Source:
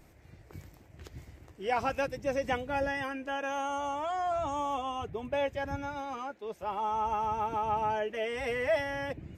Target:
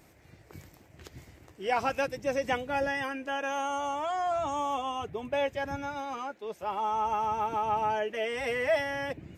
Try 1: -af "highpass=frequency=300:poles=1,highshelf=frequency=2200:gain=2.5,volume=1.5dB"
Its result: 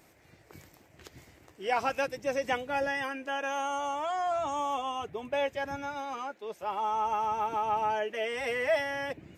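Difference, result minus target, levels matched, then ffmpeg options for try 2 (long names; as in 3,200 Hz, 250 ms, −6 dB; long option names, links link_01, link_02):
125 Hz band −5.0 dB
-af "highpass=frequency=120:poles=1,highshelf=frequency=2200:gain=2.5,volume=1.5dB"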